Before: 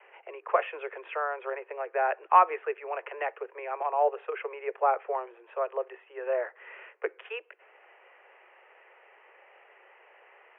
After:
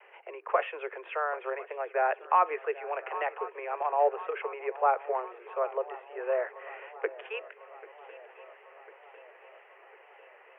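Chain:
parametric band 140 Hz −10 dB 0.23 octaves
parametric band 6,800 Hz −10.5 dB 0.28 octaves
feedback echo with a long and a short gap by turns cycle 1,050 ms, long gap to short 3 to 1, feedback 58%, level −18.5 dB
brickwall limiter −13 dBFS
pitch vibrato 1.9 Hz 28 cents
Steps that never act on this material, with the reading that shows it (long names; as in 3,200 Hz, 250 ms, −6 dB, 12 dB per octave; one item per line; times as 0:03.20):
parametric band 140 Hz: nothing at its input below 320 Hz
parametric band 6,800 Hz: nothing at its input above 2,900 Hz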